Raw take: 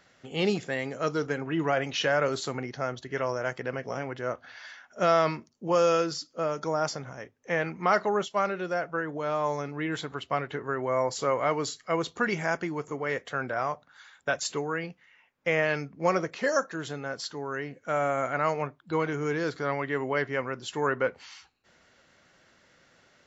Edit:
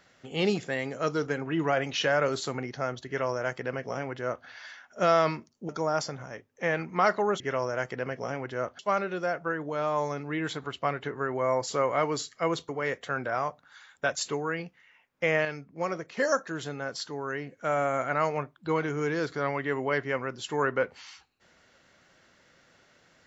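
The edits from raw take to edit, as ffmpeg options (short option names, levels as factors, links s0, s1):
-filter_complex "[0:a]asplit=7[s0][s1][s2][s3][s4][s5][s6];[s0]atrim=end=5.692[s7];[s1]atrim=start=6.558:end=8.272[s8];[s2]atrim=start=3.068:end=4.462[s9];[s3]atrim=start=8.268:end=12.172[s10];[s4]atrim=start=12.928:end=15.692[s11];[s5]atrim=start=15.688:end=16.412,asetpts=PTS-STARTPTS,volume=0.501[s12];[s6]atrim=start=16.408[s13];[s7][s8]acrossfade=d=0.004:c1=hsin:c2=hsin[s14];[s14][s9]acrossfade=d=0.004:c1=hsin:c2=hsin[s15];[s15][s10]acrossfade=d=0.004:c1=hsin:c2=hsin[s16];[s16][s11]acrossfade=d=0.004:c1=hsin:c2=hsin[s17];[s17][s12]acrossfade=d=0.004:c1=hsin:c2=hsin[s18];[s18][s13]acrossfade=d=0.004:c1=hsin:c2=hsin"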